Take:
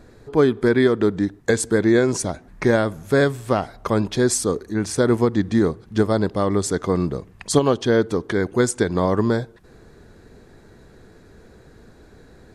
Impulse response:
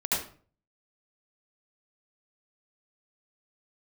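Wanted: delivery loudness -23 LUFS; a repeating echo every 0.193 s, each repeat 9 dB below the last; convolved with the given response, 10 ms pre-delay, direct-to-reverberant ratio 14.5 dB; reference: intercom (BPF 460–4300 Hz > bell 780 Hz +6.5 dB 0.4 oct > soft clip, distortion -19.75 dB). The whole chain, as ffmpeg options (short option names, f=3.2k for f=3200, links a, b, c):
-filter_complex "[0:a]aecho=1:1:193|386|579|772:0.355|0.124|0.0435|0.0152,asplit=2[a][b];[1:a]atrim=start_sample=2205,adelay=10[c];[b][c]afir=irnorm=-1:irlink=0,volume=-23.5dB[d];[a][d]amix=inputs=2:normalize=0,highpass=460,lowpass=4.3k,equalizer=f=780:t=o:w=0.4:g=6.5,asoftclip=threshold=-10.5dB,volume=2dB"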